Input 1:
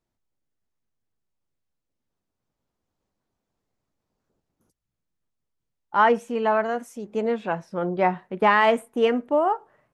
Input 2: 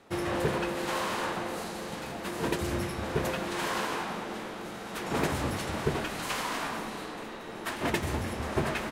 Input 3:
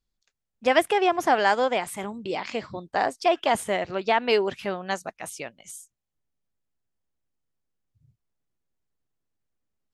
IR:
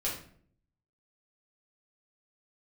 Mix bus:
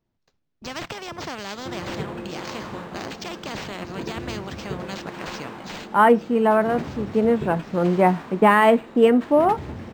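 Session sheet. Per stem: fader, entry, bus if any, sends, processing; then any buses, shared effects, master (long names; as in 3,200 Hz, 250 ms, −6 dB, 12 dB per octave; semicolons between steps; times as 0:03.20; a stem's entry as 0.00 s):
+1.5 dB, 0.00 s, no send, no processing
−7.0 dB, 1.55 s, no send, upward compression, threshold −34 dBFS
−7.5 dB, 0.00 s, no send, noise gate with hold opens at −50 dBFS; flat-topped bell 2,400 Hz −9 dB; every bin compressed towards the loudest bin 4 to 1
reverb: not used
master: parametric band 170 Hz +7.5 dB 2.6 octaves; linearly interpolated sample-rate reduction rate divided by 4×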